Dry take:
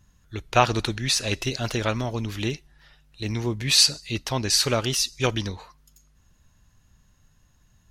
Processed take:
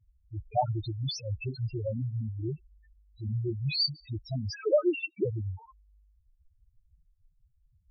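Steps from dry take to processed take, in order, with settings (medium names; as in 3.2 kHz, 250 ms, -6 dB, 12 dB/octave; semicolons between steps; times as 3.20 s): 4.53–5.25 s: formants replaced by sine waves; expander -56 dBFS; loudest bins only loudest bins 2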